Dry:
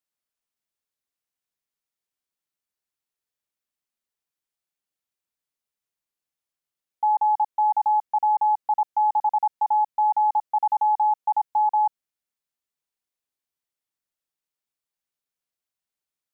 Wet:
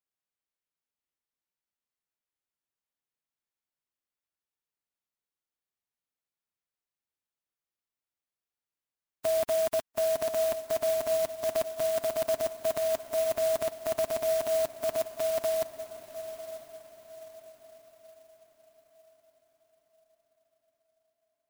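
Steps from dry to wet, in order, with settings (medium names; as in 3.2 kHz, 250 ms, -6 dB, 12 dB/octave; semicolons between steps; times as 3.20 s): formants flattened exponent 0.3; tape speed -24%; echo that smears into a reverb 950 ms, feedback 42%, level -11 dB; sampling jitter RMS 0.051 ms; trim -6.5 dB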